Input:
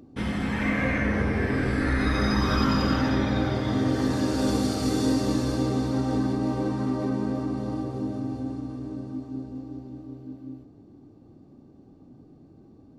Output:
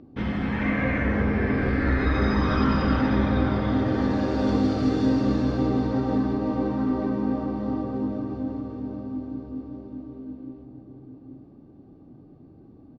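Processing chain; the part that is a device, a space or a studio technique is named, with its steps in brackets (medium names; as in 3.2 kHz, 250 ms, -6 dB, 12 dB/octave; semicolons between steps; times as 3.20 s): shout across a valley (distance through air 220 m; echo from a far wall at 140 m, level -7 dB); trim +1.5 dB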